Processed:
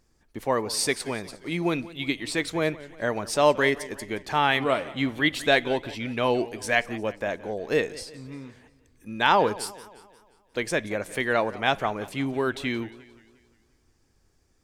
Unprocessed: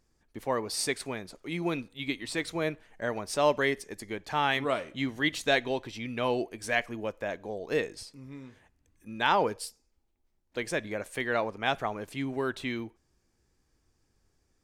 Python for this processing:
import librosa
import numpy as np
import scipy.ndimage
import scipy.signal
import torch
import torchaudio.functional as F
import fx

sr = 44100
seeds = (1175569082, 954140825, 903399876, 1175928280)

y = fx.peak_eq(x, sr, hz=6200.0, db=-6.0, octaves=0.52, at=(4.38, 5.97))
y = fx.echo_warbled(y, sr, ms=177, feedback_pct=51, rate_hz=2.8, cents=150, wet_db=-18.5)
y = F.gain(torch.from_numpy(y), 5.0).numpy()